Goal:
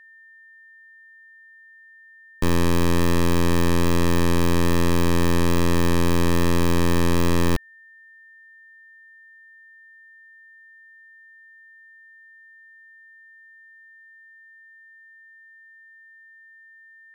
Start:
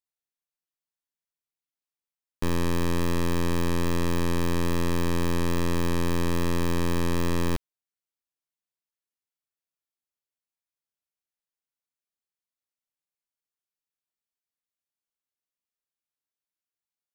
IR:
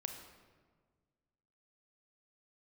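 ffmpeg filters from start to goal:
-af "aeval=exprs='val(0)+0.00224*sin(2*PI*1800*n/s)':c=same,volume=2"

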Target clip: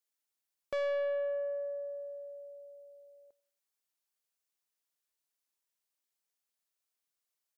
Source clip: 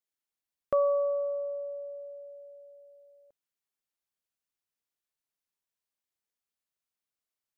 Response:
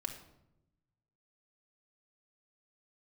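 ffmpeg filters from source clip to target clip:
-filter_complex "[0:a]bass=f=250:g=-9,treble=f=4000:g=4,asoftclip=type=tanh:threshold=0.0299,asplit=2[s0][s1];[s1]adelay=95,lowpass=f=2000:p=1,volume=0.0708,asplit=2[s2][s3];[s3]adelay=95,lowpass=f=2000:p=1,volume=0.51,asplit=2[s4][s5];[s5]adelay=95,lowpass=f=2000:p=1,volume=0.51[s6];[s0][s2][s4][s6]amix=inputs=4:normalize=0"

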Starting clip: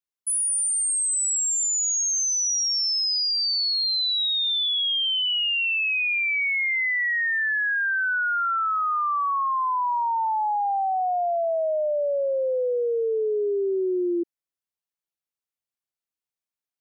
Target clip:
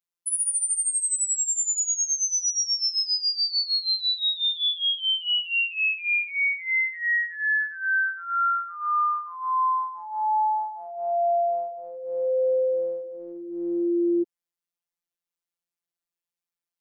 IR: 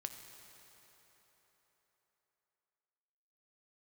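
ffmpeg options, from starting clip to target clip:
-af "afftfilt=real='hypot(re,im)*cos(PI*b)':imag='0':win_size=1024:overlap=0.75,volume=1.33"

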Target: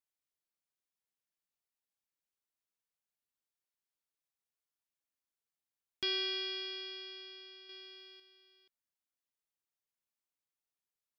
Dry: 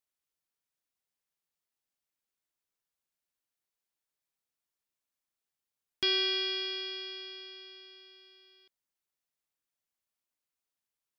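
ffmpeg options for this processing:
-filter_complex "[0:a]asettb=1/sr,asplit=3[s0][s1][s2];[s0]atrim=end=7.694[s3];[s1]atrim=start=7.69:end=8.2,asetpts=PTS-STARTPTS,afade=t=in:d=0.004:c=qsin,afade=t=out:st=0.506:d=0.004:c=qsin,acontrast=61[s4];[s2]atrim=start=8.196[s5];[s3][s4]acrossfade=d=0.004:c1=hsin:c2=qsin[s6];[s6][s5]acrossfade=d=0.004:c1=qsin:c2=hsin,volume=0.501"

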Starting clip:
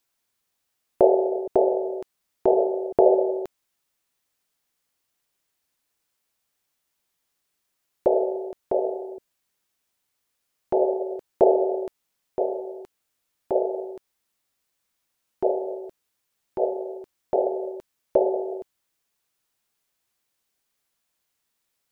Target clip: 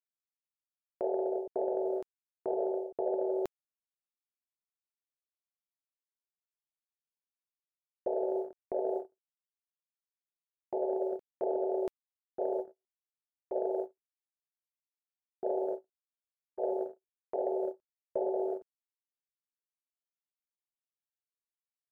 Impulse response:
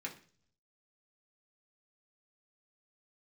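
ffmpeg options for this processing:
-af "agate=range=0.00178:threshold=0.0316:ratio=16:detection=peak,areverse,acompressor=threshold=0.0355:ratio=12,areverse"

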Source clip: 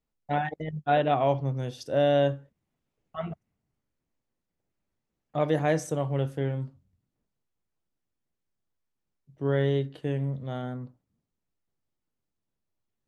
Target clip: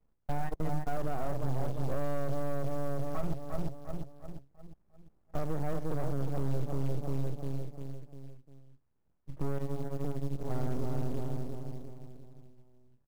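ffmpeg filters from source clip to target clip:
-filter_complex "[0:a]asplit=2[s0][s1];[s1]adelay=350,lowpass=f=950:p=1,volume=0.422,asplit=2[s2][s3];[s3]adelay=350,lowpass=f=950:p=1,volume=0.5,asplit=2[s4][s5];[s5]adelay=350,lowpass=f=950:p=1,volume=0.5,asplit=2[s6][s7];[s7]adelay=350,lowpass=f=950:p=1,volume=0.5,asplit=2[s8][s9];[s9]adelay=350,lowpass=f=950:p=1,volume=0.5,asplit=2[s10][s11];[s11]adelay=350,lowpass=f=950:p=1,volume=0.5[s12];[s0][s2][s4][s6][s8][s10][s12]amix=inputs=7:normalize=0,asplit=2[s13][s14];[s14]alimiter=limit=0.106:level=0:latency=1:release=29,volume=1.19[s15];[s13][s15]amix=inputs=2:normalize=0,acompressor=threshold=0.0282:ratio=8,highpass=f=61:p=1,aeval=exprs='max(val(0),0)':c=same,asettb=1/sr,asplit=3[s16][s17][s18];[s16]atrim=end=9.584[s19];[s17]atrim=start=9.58:end=10.5,asetpts=PTS-STARTPTS,afade=t=in:d=0.004:c=qsin,afade=t=out:st=0.916:d=0.004:c=qsin,tremolo=f=150:d=0.857[s20];[s18]atrim=start=10.496[s21];[s19][s20]acrossfade=d=0.004:c1=hsin:c2=qsin[s22];[s22][s21]acrossfade=d=0.004:c1=qsin:c2=hsin,asoftclip=type=tanh:threshold=0.0282,lowpass=1300,acrusher=bits=5:mode=log:mix=0:aa=0.000001,lowshelf=f=100:g=12,volume=1.78"

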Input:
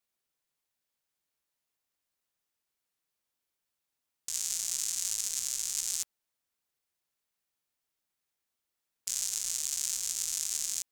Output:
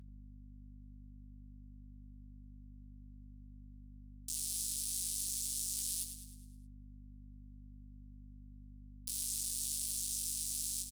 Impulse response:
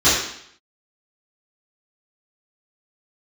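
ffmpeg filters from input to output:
-filter_complex "[0:a]lowpass=11000,afftfilt=real='re*lt(hypot(re,im),0.0355)':imag='im*lt(hypot(re,im),0.0355)':win_size=1024:overlap=0.75,aeval=exprs='val(0)*gte(abs(val(0)),0.0224)':c=same,equalizer=f=1800:t=o:w=0.87:g=-8.5,alimiter=level_in=1.26:limit=0.0631:level=0:latency=1:release=18,volume=0.794,crystalizer=i=4:c=0,flanger=delay=15.5:depth=6.6:speed=2.8,highshelf=f=2900:g=5,flanger=delay=7.6:depth=2.9:regen=88:speed=0.24:shape=triangular,aeval=exprs='val(0)+0.00398*(sin(2*PI*50*n/s)+sin(2*PI*2*50*n/s)/2+sin(2*PI*3*50*n/s)/3+sin(2*PI*4*50*n/s)/4+sin(2*PI*5*50*n/s)/5)':c=same,asplit=2[s0][s1];[s1]aecho=0:1:104|208|312|416|520|624:0.355|0.177|0.0887|0.0444|0.0222|0.0111[s2];[s0][s2]amix=inputs=2:normalize=0,volume=0.668" -ar 44100 -c:a libvorbis -b:a 96k

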